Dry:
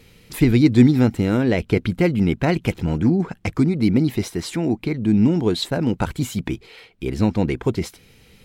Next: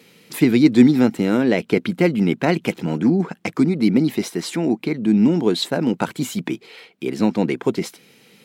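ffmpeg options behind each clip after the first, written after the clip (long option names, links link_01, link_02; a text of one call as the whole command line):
ffmpeg -i in.wav -af "highpass=frequency=170:width=0.5412,highpass=frequency=170:width=1.3066,volume=2dB" out.wav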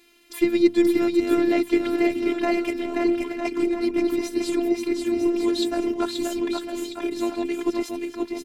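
ffmpeg -i in.wav -af "aecho=1:1:530|954|1293|1565|1782:0.631|0.398|0.251|0.158|0.1,afftfilt=real='hypot(re,im)*cos(PI*b)':imag='0':win_size=512:overlap=0.75,volume=-2.5dB" out.wav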